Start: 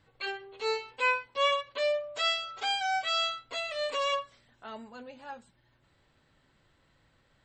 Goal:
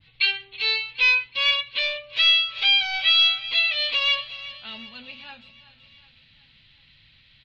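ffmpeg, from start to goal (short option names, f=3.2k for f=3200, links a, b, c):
-af "asoftclip=type=hard:threshold=-27dB,firequalizer=gain_entry='entry(130,0);entry(390,-16);entry(1500,-7);entry(2400,12);entry(4000,12);entry(7600,-23)':delay=0.05:min_phase=1,aecho=1:1:371|742|1113|1484|1855:0.15|0.0808|0.0436|0.0236|0.0127,adynamicequalizer=threshold=0.00126:dfrequency=1800:dqfactor=0.7:tfrequency=1800:tqfactor=0.7:attack=5:release=100:ratio=0.375:range=2:mode=cutabove:tftype=highshelf,volume=8dB"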